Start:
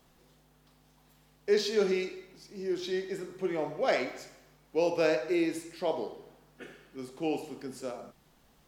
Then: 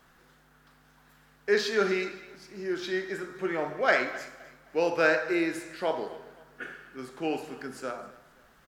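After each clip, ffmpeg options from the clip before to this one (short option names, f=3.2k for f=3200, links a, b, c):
-af "equalizer=f=1.5k:w=1.6:g=14,aecho=1:1:260|520|780:0.106|0.0371|0.013"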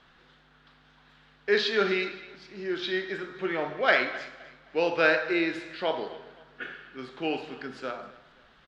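-af "lowpass=f=3.6k:t=q:w=2.4"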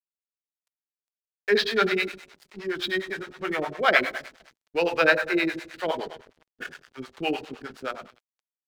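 -filter_complex "[0:a]aeval=exprs='sgn(val(0))*max(abs(val(0))-0.00473,0)':c=same,acrossover=split=490[a][b];[a]aeval=exprs='val(0)*(1-1/2+1/2*cos(2*PI*9.7*n/s))':c=same[c];[b]aeval=exprs='val(0)*(1-1/2-1/2*cos(2*PI*9.7*n/s))':c=same[d];[c][d]amix=inputs=2:normalize=0,volume=8dB"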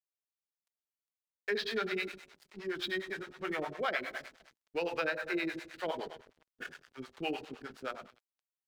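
-af "acompressor=threshold=-23dB:ratio=6,volume=-7dB"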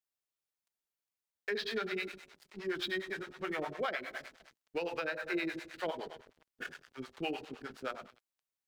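-af "alimiter=level_in=1.5dB:limit=-24dB:level=0:latency=1:release=448,volume=-1.5dB,volume=1dB"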